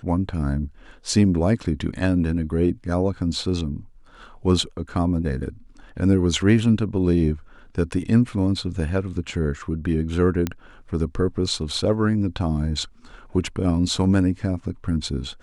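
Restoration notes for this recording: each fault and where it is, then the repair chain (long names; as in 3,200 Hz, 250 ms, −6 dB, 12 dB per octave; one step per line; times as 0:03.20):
0:10.47: click −10 dBFS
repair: click removal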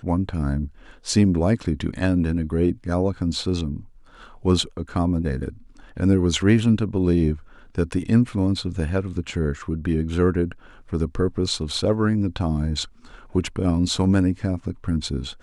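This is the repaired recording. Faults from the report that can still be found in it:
none of them is left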